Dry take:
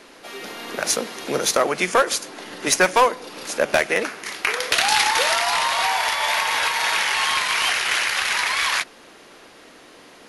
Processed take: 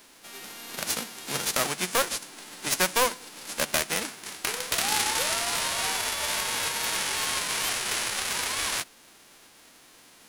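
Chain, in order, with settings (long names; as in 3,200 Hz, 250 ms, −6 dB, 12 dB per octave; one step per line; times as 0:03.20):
spectral envelope flattened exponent 0.3
level −7.5 dB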